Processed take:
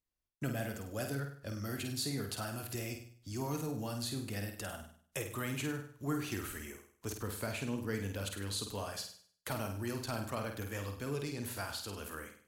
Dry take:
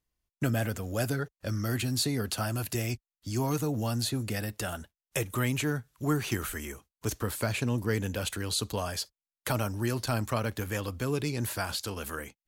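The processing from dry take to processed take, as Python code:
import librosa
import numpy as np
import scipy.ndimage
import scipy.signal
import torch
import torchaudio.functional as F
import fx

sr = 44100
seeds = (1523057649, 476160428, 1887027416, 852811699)

y = fx.hum_notches(x, sr, base_hz=60, count=3)
y = fx.room_flutter(y, sr, wall_m=8.6, rt60_s=0.51)
y = y * 10.0 ** (-8.5 / 20.0)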